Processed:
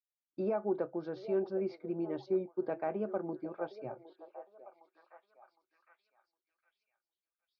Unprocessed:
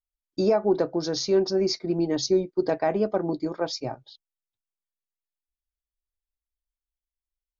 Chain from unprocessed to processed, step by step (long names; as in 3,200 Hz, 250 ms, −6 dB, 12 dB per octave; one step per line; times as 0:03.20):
loudspeaker in its box 170–2,300 Hz, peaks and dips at 170 Hz −4 dB, 280 Hz −9 dB, 440 Hz −5 dB, 690 Hz −5 dB, 1,000 Hz −5 dB, 1,900 Hz −10 dB
echo through a band-pass that steps 761 ms, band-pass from 560 Hz, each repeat 0.7 octaves, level −11 dB
level −6.5 dB